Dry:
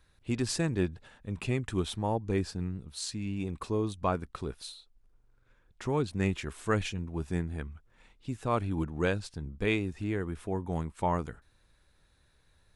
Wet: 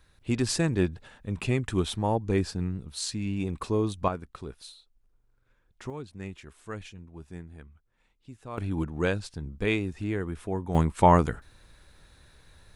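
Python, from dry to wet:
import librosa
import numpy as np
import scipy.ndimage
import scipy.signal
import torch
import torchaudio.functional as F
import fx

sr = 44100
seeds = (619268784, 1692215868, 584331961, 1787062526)

y = fx.gain(x, sr, db=fx.steps((0.0, 4.0), (4.08, -3.0), (5.9, -10.0), (8.58, 2.0), (10.75, 11.0)))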